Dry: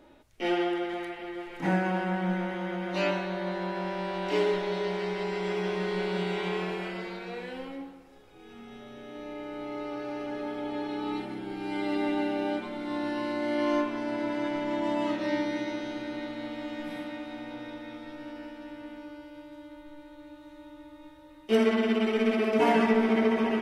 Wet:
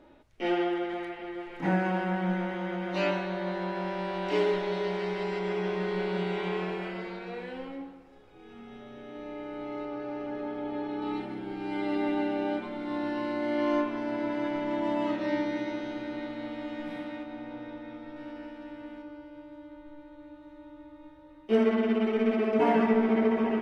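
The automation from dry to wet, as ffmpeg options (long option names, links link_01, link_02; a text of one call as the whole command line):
ffmpeg -i in.wav -af "asetnsamples=nb_out_samples=441:pad=0,asendcmd='1.79 lowpass f 5000;5.39 lowpass f 2800;9.85 lowpass f 1600;11.02 lowpass f 2900;17.23 lowpass f 1500;18.16 lowpass f 2700;19.02 lowpass f 1500',lowpass=frequency=3100:poles=1" out.wav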